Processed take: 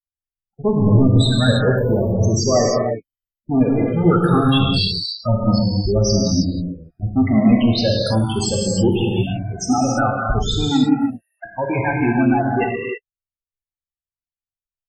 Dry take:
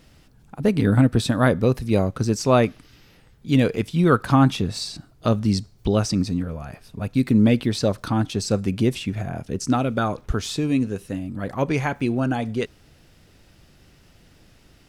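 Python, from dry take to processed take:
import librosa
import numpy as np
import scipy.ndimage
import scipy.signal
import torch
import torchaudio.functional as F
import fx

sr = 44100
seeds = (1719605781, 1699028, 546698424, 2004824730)

y = fx.bin_expand(x, sr, power=2.0)
y = fx.steep_highpass(y, sr, hz=630.0, slope=96, at=(10.87, 11.45), fade=0.02)
y = fx.level_steps(y, sr, step_db=12)
y = fx.leveller(y, sr, passes=5)
y = fx.spec_topn(y, sr, count=16)
y = fx.rev_gated(y, sr, seeds[0], gate_ms=350, shape='flat', drr_db=-2.5)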